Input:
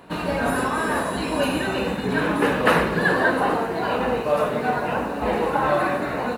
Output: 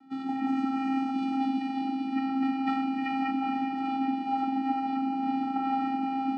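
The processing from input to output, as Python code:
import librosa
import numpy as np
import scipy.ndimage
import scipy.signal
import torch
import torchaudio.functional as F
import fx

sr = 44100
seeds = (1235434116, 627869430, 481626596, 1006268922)

y = fx.cheby_ripple_highpass(x, sr, hz=210.0, ripple_db=3, at=(1.36, 3.55))
y = fx.vocoder(y, sr, bands=8, carrier='square', carrier_hz=267.0)
y = fx.echo_diffused(y, sr, ms=459, feedback_pct=44, wet_db=-6)
y = F.gain(torch.from_numpy(y), -7.0).numpy()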